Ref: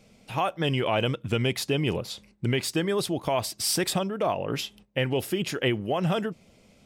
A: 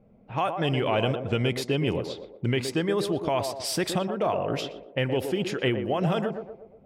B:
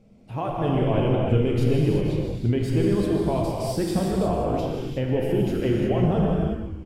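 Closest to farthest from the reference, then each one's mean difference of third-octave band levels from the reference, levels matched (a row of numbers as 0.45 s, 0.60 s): A, B; 5.0 dB, 10.0 dB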